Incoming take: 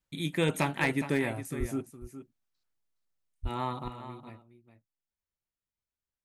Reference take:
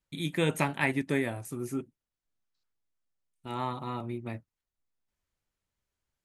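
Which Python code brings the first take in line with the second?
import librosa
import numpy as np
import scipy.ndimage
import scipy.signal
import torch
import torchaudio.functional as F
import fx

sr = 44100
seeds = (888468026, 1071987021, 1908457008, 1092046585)

y = fx.fix_declip(x, sr, threshold_db=-18.0)
y = fx.highpass(y, sr, hz=140.0, slope=24, at=(1.59, 1.71), fade=0.02)
y = fx.highpass(y, sr, hz=140.0, slope=24, at=(3.42, 3.54), fade=0.02)
y = fx.fix_echo_inverse(y, sr, delay_ms=414, level_db=-12.0)
y = fx.gain(y, sr, db=fx.steps((0.0, 0.0), (3.88, 11.0)))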